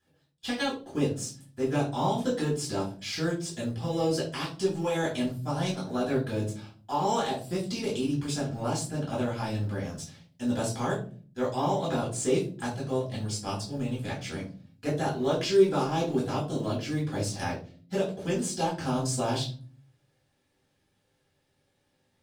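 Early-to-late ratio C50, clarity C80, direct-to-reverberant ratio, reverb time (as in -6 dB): 8.0 dB, 13.5 dB, -7.5 dB, 0.40 s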